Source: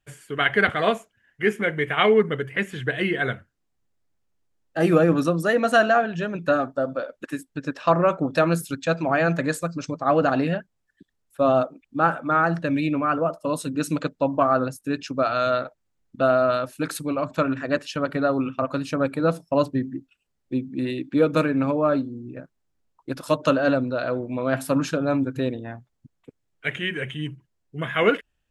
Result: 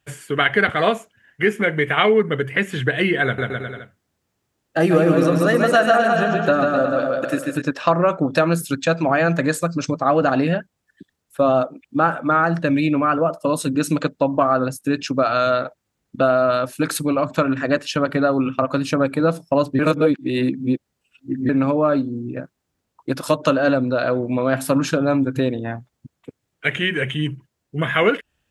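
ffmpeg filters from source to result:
ffmpeg -i in.wav -filter_complex "[0:a]asettb=1/sr,asplit=3[link_01][link_02][link_03];[link_01]atrim=end=3.244[link_04];[link_02]atrim=start=3.24:end=7.62,asetpts=PTS-STARTPTS,afade=type=in:duration=0.004:curve=qsin,afade=type=out:start_time=4.376:duration=0.004:curve=qsin,aecho=1:1:140|259|360.2|446.1|519.2:0.631|0.398|0.251|0.158|0.1,atrim=end_sample=193158[link_05];[link_03]atrim=start=7.616[link_06];[link_04][link_05]acrossfade=duration=0.004:curve1=hsin:curve2=qsin[link_07];[link_07][link_06]acrossfade=duration=0.004:curve1=qsin:curve2=hsin,asplit=3[link_08][link_09][link_10];[link_08]atrim=end=19.792[link_11];[link_09]atrim=start=19.788:end=21.492,asetpts=PTS-STARTPTS,areverse[link_12];[link_10]atrim=start=21.488[link_13];[link_11][link_12]acrossfade=duration=0.004:curve1=hsin:curve2=hsin[link_14];[link_14][link_13]acrossfade=duration=0.004:curve1=hsin:curve2=hsin,highpass=63,acompressor=threshold=-26dB:ratio=2,volume=8.5dB" out.wav

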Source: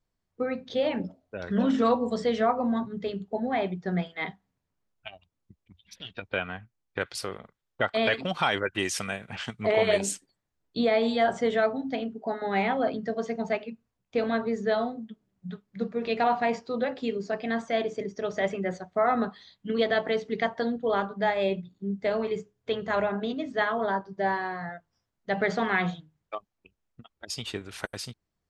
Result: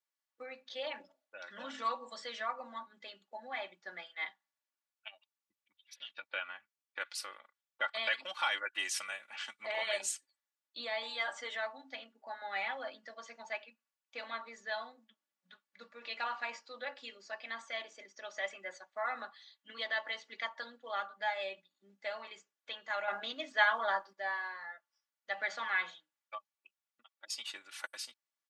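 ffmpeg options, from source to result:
ffmpeg -i in.wav -filter_complex "[0:a]asettb=1/sr,asplit=3[link_01][link_02][link_03];[link_01]atrim=end=11.024[link_04];[link_02]atrim=start=11.02:end=11.55,asetpts=PTS-STARTPTS,afade=type=in:duration=0.004:curve=qsin,afade=type=out:start_time=0.526:duration=0.004:curve=qsin,aecho=1:1:6.8:0.51,atrim=end_sample=23373[link_05];[link_03]atrim=start=11.546[link_06];[link_04][link_05]acrossfade=duration=0.004:curve1=hsin:curve2=qsin[link_07];[link_07][link_06]acrossfade=duration=0.004:curve1=qsin:curve2=hsin,asplit=3[link_08][link_09][link_10];[link_08]atrim=end=23.082[link_11];[link_09]atrim=start=23.078:end=24.132,asetpts=PTS-STARTPTS,volume=7.5dB[link_12];[link_10]atrim=start=24.128[link_13];[link_11][link_12]acrossfade=duration=0.004:curve1=hsin:curve2=hsin[link_14];[link_14][link_13]acrossfade=duration=0.004:curve1=hsin:curve2=hsin,highpass=1100,aecho=1:1:3.5:0.73,volume=-6.5dB" out.wav

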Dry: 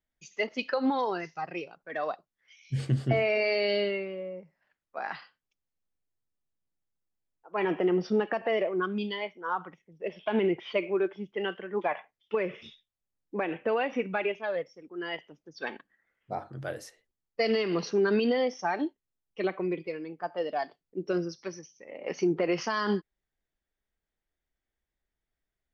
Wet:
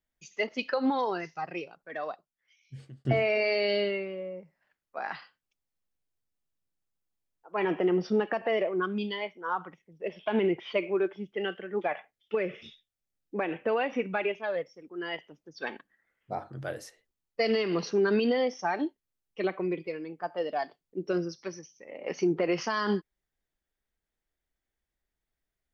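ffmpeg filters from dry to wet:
ffmpeg -i in.wav -filter_complex "[0:a]asettb=1/sr,asplit=3[link_01][link_02][link_03];[link_01]atrim=end=11.184[link_04];[link_02]atrim=start=11.18:end=13.39,asetpts=PTS-STARTPTS,afade=type=in:duration=0.004:curve=qsin,afade=type=out:start_time=2.206:duration=0.004:curve=qsin,equalizer=frequency=1000:width=6.5:gain=-12.5[link_05];[link_03]atrim=start=13.386[link_06];[link_04][link_05]acrossfade=duration=0.004:curve1=hsin:curve2=qsin[link_07];[link_07][link_06]acrossfade=duration=0.004:curve1=qsin:curve2=hsin,asplit=2[link_08][link_09];[link_08]atrim=end=3.05,asetpts=PTS-STARTPTS,afade=type=out:start_time=1.56:duration=1.49[link_10];[link_09]atrim=start=3.05,asetpts=PTS-STARTPTS,afade=type=in:duration=0.004:curve=hsin[link_11];[link_10][link_11]concat=n=2:v=0:a=1" out.wav

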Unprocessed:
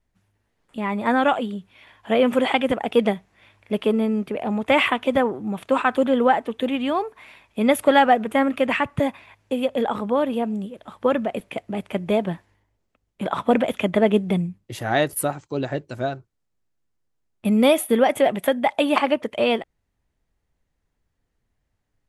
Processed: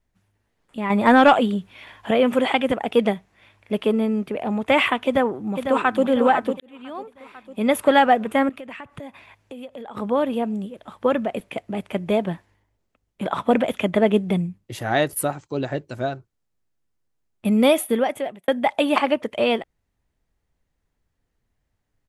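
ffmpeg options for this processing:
ffmpeg -i in.wav -filter_complex "[0:a]asettb=1/sr,asplit=3[link_01][link_02][link_03];[link_01]atrim=end=0.904[link_04];[link_02]atrim=start=0.9:end=2.11,asetpts=PTS-STARTPTS,afade=type=in:duration=0.004:curve=qsin,afade=type=out:start_time=1.206:duration=0.004:curve=qsin,acontrast=72[link_05];[link_03]atrim=start=2.106[link_06];[link_04][link_05]acrossfade=duration=0.004:curve1=hsin:curve2=qsin[link_07];[link_07][link_06]acrossfade=duration=0.004:curve1=qsin:curve2=hsin,asplit=2[link_08][link_09];[link_09]afade=type=in:start_time=5.05:duration=0.01,afade=type=out:start_time=6.04:duration=0.01,aecho=0:1:500|1000|1500|2000|2500|3000:0.446684|0.223342|0.111671|0.0558354|0.0279177|0.0139589[link_10];[link_08][link_10]amix=inputs=2:normalize=0,asettb=1/sr,asplit=3[link_11][link_12][link_13];[link_11]atrim=end=8.494[link_14];[link_12]atrim=start=8.49:end=9.97,asetpts=PTS-STARTPTS,afade=type=in:duration=0.004:curve=qsin,afade=type=out:start_time=1.476:duration=0.004:curve=qsin,acompressor=threshold=-36dB:ratio=4:attack=3.2:release=140:knee=1:detection=peak[link_15];[link_13]atrim=start=9.966[link_16];[link_14][link_15]acrossfade=duration=0.004:curve1=hsin:curve2=qsin[link_17];[link_17][link_16]acrossfade=duration=0.004:curve1=qsin:curve2=hsin,asplit=3[link_18][link_19][link_20];[link_18]atrim=end=6.6,asetpts=PTS-STARTPTS,afade=type=out:start_time=6.596:duration=0.004:curve=hsin[link_21];[link_19]atrim=start=6.6:end=18.48,asetpts=PTS-STARTPTS,afade=type=in:duration=1.28,afade=type=out:start_time=11.18:duration=0.7[link_22];[link_20]atrim=start=18.48,asetpts=PTS-STARTPTS,afade=type=in:duration=0.004:curve=hsin[link_23];[link_21][link_22][link_23]concat=n=3:v=0:a=1" out.wav

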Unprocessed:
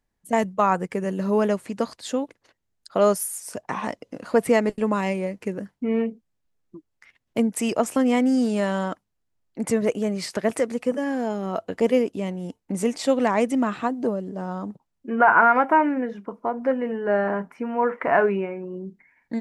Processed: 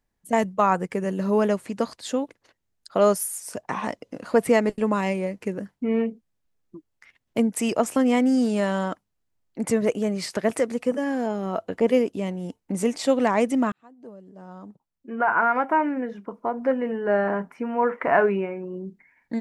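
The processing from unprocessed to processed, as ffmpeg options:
ffmpeg -i in.wav -filter_complex "[0:a]asettb=1/sr,asplit=3[link_01][link_02][link_03];[link_01]atrim=end=11.264[link_04];[link_02]atrim=start=11.26:end=11.88,asetpts=PTS-STARTPTS,afade=type=in:duration=0.004:curve=qsin,afade=type=out:start_time=0.616:duration=0.004:curve=qsin,acrossover=split=2900[link_05][link_06];[link_06]acompressor=threshold=-52dB:ratio=4:attack=1:release=60[link_07];[link_05][link_07]amix=inputs=2:normalize=0[link_08];[link_03]atrim=start=11.876[link_09];[link_04][link_08]acrossfade=duration=0.004:curve1=hsin:curve2=qsin[link_10];[link_10][link_09]acrossfade=duration=0.004:curve1=qsin:curve2=hsin,asplit=2[link_11][link_12];[link_11]atrim=end=13.72,asetpts=PTS-STARTPTS,afade=type=out:start_time=13.716:duration=0.004:curve=hsin[link_13];[link_12]atrim=start=13.72,asetpts=PTS-STARTPTS,afade=type=in:duration=2.99[link_14];[link_13][link_14]concat=n=2:v=0:a=1" out.wav

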